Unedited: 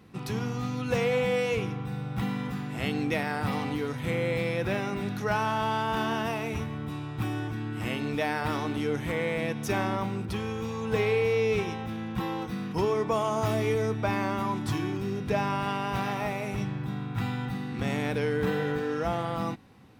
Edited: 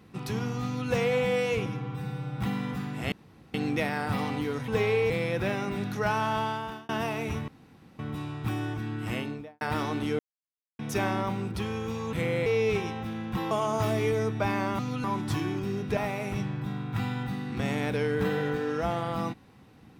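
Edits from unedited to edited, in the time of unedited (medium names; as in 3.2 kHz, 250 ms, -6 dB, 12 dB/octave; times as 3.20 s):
0.65–0.90 s: copy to 14.42 s
1.66–2.14 s: stretch 1.5×
2.88 s: insert room tone 0.42 s
4.02–4.35 s: swap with 10.87–11.29 s
5.61–6.14 s: fade out
6.73 s: insert room tone 0.51 s
7.84–8.35 s: studio fade out
8.93–9.53 s: mute
12.34–13.14 s: delete
15.35–16.19 s: delete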